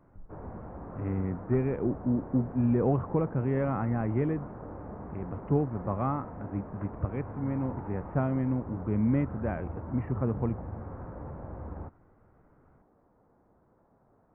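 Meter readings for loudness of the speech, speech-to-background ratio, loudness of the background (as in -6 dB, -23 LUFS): -31.0 LUFS, 11.5 dB, -42.5 LUFS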